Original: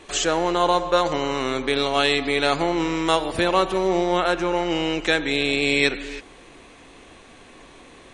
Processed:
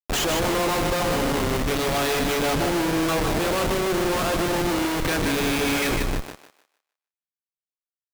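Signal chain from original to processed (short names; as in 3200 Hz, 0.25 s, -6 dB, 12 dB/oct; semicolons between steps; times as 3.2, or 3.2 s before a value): notches 60/120/180/240/300/360/420/480/540/600 Hz; Schmitt trigger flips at -27 dBFS; thinning echo 0.152 s, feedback 30%, high-pass 470 Hz, level -5 dB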